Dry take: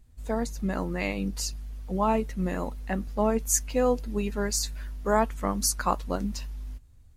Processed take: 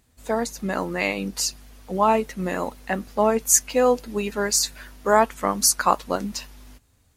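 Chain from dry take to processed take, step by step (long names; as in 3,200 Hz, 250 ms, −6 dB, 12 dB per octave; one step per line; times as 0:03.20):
high-pass filter 410 Hz 6 dB per octave
level +8 dB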